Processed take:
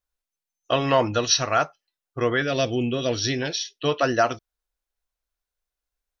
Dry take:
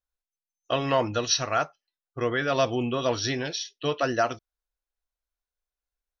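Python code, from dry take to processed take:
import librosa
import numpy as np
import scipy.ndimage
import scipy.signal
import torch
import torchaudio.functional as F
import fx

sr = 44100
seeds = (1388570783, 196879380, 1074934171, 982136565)

y = fx.peak_eq(x, sr, hz=1000.0, db=-14.0, octaves=0.88, at=(2.42, 3.42))
y = y * librosa.db_to_amplitude(4.0)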